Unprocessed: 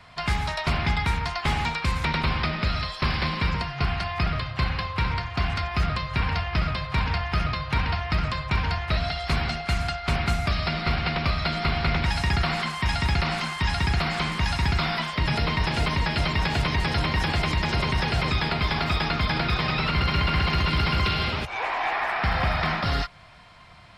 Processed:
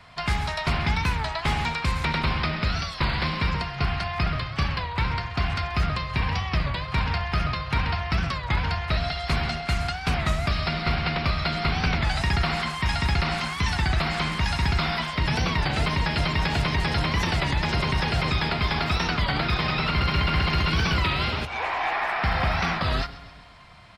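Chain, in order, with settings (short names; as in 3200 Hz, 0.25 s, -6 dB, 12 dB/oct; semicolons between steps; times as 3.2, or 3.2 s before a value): 5.91–6.86 notch 1400 Hz, Q 12; feedback echo 0.133 s, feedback 56%, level -17 dB; record warp 33 1/3 rpm, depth 160 cents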